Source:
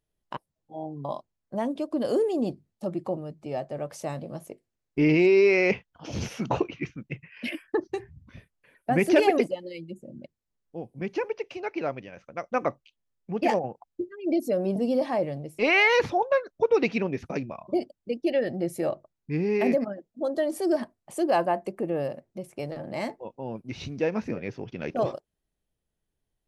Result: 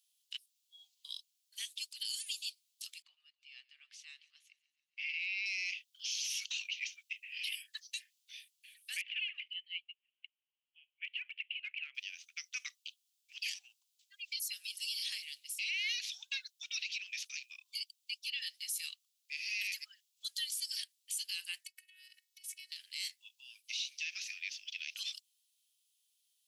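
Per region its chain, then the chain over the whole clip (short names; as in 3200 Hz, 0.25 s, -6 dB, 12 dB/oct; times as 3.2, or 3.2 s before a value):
3.02–5.46 LPF 1600 Hz + warbling echo 0.139 s, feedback 63%, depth 70 cents, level -22 dB
9.01–11.95 Chebyshev band-pass 230–3000 Hz, order 5 + compressor, threshold -27 dBFS
21.63–22.72 bell 1800 Hz +12.5 dB 0.54 oct + compressor 5:1, threshold -42 dBFS + robotiser 371 Hz
whole clip: steep high-pass 2900 Hz 36 dB/oct; compressor, threshold -44 dBFS; limiter -42.5 dBFS; gain +14.5 dB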